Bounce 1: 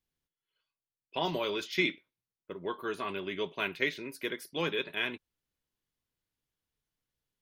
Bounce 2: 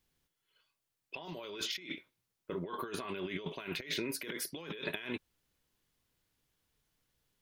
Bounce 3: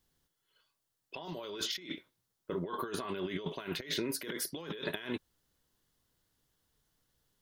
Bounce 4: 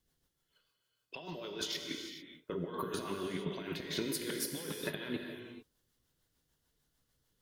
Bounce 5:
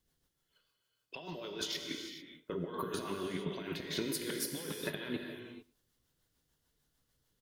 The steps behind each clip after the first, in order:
compressor whose output falls as the input rises −43 dBFS, ratio −1; level +1.5 dB
parametric band 2,400 Hz −8.5 dB 0.37 octaves; level +2.5 dB
rotating-speaker cabinet horn 6.7 Hz; reverb whose tail is shaped and stops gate 470 ms flat, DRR 4 dB
single-tap delay 113 ms −24 dB

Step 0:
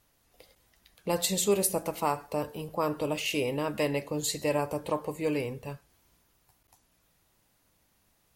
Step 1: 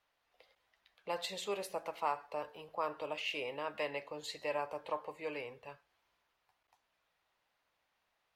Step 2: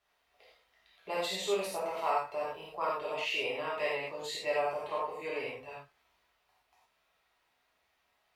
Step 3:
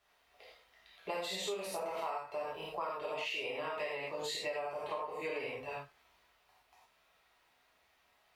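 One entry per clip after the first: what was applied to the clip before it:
three-way crossover with the lows and the highs turned down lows −18 dB, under 520 Hz, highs −20 dB, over 4,200 Hz; level −4.5 dB
reverb whose tail is shaped and stops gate 130 ms flat, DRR −7 dB; level −2 dB
downward compressor 12 to 1, threshold −39 dBFS, peak gain reduction 14.5 dB; level +4 dB

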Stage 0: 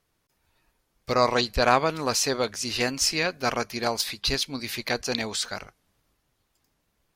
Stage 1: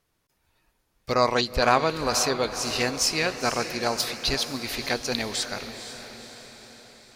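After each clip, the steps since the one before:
feedback delay with all-pass diffusion 491 ms, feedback 56%, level −10.5 dB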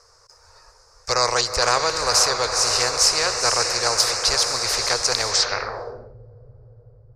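drawn EQ curve 110 Hz 0 dB, 180 Hz −24 dB, 270 Hz −25 dB, 480 Hz +10 dB, 710 Hz +2 dB, 1,200 Hz +10 dB, 3,300 Hz −15 dB, 5,000 Hz +14 dB, 10,000 Hz −10 dB, 15,000 Hz −5 dB
low-pass filter sweep 8,800 Hz → 130 Hz, 0:05.28–0:06.15
every bin compressed towards the loudest bin 2 to 1
level −6.5 dB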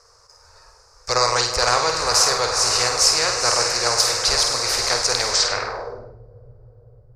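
flutter between parallel walls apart 8.6 metres, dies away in 0.48 s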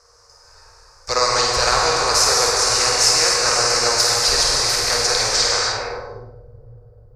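reverb whose tail is shaped and stops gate 320 ms flat, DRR −0.5 dB
level −1 dB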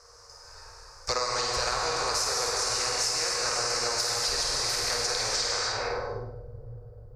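downward compressor 6 to 1, threshold −26 dBFS, peak gain reduction 14.5 dB

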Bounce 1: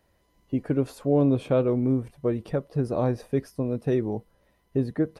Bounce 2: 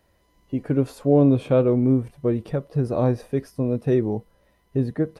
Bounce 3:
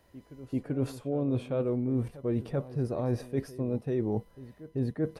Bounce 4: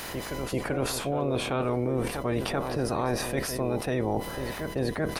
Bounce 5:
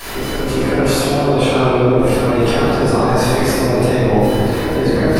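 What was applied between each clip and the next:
harmonic and percussive parts rebalanced harmonic +5 dB
reversed playback; downward compressor 10 to 1, threshold −26 dBFS, peak gain reduction 14.5 dB; reversed playback; backwards echo 388 ms −16.5 dB
ceiling on every frequency bin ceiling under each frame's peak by 20 dB; envelope flattener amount 70%
convolution reverb RT60 2.4 s, pre-delay 3 ms, DRR −14.5 dB; level −3 dB

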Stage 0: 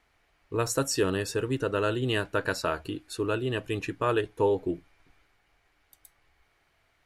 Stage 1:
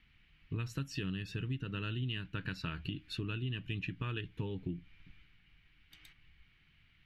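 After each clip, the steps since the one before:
gain on a spectral selection 0:05.91–0:06.13, 260–9,500 Hz +8 dB
drawn EQ curve 100 Hz 0 dB, 180 Hz +5 dB, 590 Hz −26 dB, 2,900 Hz +1 dB, 8,500 Hz −26 dB, 12,000 Hz −20 dB
downward compressor 6 to 1, threshold −41 dBFS, peak gain reduction 14.5 dB
level +6 dB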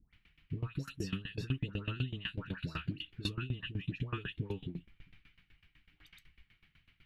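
all-pass dispersion highs, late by 135 ms, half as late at 1,200 Hz
tremolo with a ramp in dB decaying 8 Hz, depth 21 dB
level +6.5 dB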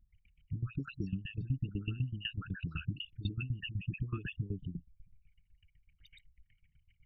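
spectral envelope exaggerated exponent 3
level +1 dB

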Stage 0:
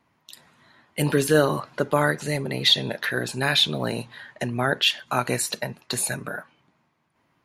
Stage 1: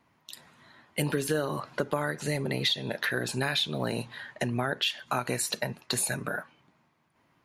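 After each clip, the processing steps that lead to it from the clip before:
downward compressor 6 to 1, threshold −25 dBFS, peak gain reduction 12 dB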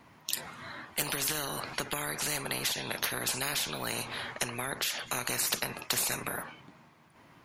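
noise reduction from a noise print of the clip's start 9 dB
every bin compressed towards the loudest bin 4 to 1
level +2.5 dB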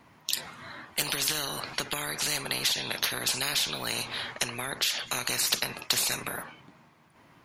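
dynamic equaliser 4,100 Hz, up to +7 dB, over −46 dBFS, Q 0.86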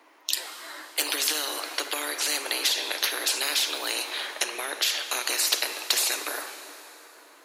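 Chebyshev high-pass filter 300 Hz, order 5
dense smooth reverb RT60 4.4 s, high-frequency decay 0.7×, DRR 8.5 dB
level +2.5 dB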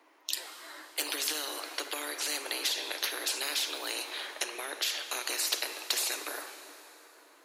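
low shelf with overshoot 210 Hz −9 dB, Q 1.5
level −6.5 dB

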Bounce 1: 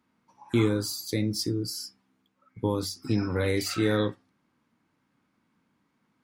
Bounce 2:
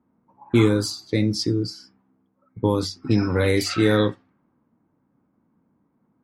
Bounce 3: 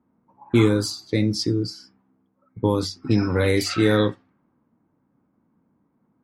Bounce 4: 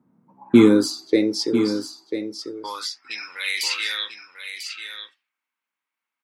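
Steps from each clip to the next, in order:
low-pass that shuts in the quiet parts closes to 770 Hz, open at −22 dBFS; level +6.5 dB
no processing that can be heard
high-pass filter sweep 140 Hz → 2,600 Hz, 0:00.10–0:03.37; single-tap delay 994 ms −9 dB; level +1 dB

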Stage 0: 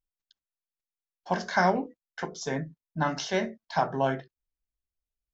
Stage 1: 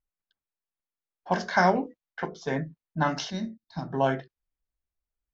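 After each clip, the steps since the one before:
gain on a spectral selection 0:03.30–0:03.93, 360–3,600 Hz −17 dB
low-pass that shuts in the quiet parts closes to 1,800 Hz, open at −22 dBFS
level +2 dB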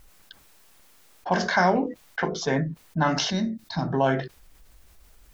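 envelope flattener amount 50%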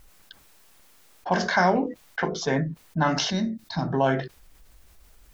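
no processing that can be heard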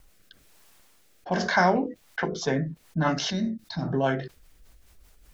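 rotating-speaker cabinet horn 1.1 Hz, later 5 Hz, at 0:01.73

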